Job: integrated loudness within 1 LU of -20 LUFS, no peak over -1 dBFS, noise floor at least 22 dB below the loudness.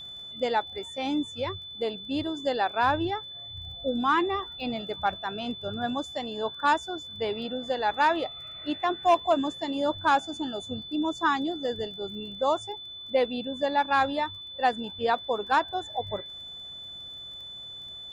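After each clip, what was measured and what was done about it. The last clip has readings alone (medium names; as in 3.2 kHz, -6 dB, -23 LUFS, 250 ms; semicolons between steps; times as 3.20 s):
tick rate 25 per s; steady tone 3.5 kHz; tone level -39 dBFS; loudness -29.0 LUFS; peak level -13.0 dBFS; loudness target -20.0 LUFS
-> de-click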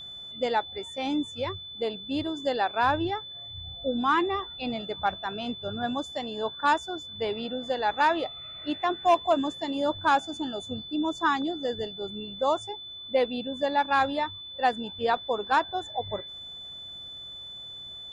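tick rate 0 per s; steady tone 3.5 kHz; tone level -39 dBFS
-> band-stop 3.5 kHz, Q 30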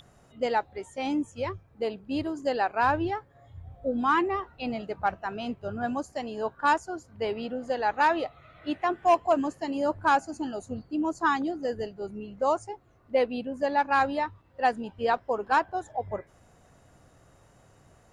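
steady tone not found; loudness -28.5 LUFS; peak level -13.0 dBFS; loudness target -20.0 LUFS
-> trim +8.5 dB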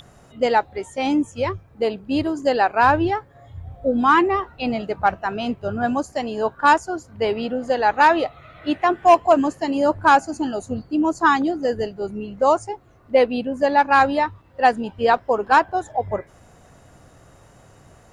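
loudness -20.0 LUFS; peak level -4.5 dBFS; noise floor -51 dBFS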